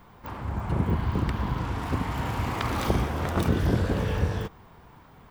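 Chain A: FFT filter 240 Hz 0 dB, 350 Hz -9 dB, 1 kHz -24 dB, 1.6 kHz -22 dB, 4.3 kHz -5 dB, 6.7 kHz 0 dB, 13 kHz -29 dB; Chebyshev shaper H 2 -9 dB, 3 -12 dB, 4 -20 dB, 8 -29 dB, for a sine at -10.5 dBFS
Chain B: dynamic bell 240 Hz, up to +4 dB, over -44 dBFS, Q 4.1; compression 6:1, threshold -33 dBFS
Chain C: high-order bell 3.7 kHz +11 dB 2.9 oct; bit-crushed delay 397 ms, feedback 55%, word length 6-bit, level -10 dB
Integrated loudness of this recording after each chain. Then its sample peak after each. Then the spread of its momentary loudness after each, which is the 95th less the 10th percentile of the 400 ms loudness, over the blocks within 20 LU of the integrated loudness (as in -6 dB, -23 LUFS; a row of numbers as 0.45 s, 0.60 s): -37.0 LUFS, -37.5 LUFS, -25.5 LUFS; -6.0 dBFS, -20.0 dBFS, -3.0 dBFS; 13 LU, 9 LU, 13 LU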